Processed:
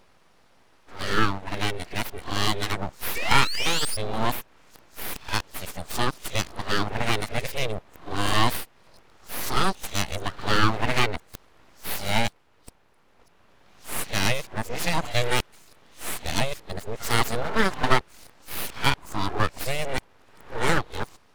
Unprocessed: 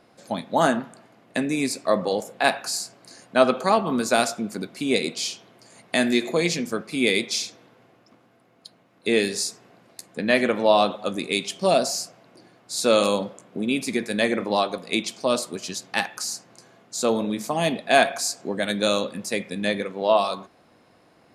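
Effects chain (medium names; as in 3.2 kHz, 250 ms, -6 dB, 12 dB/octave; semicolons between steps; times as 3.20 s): reverse the whole clip; painted sound rise, 3.15–3.97 s, 1.1–5.2 kHz -25 dBFS; full-wave rectifier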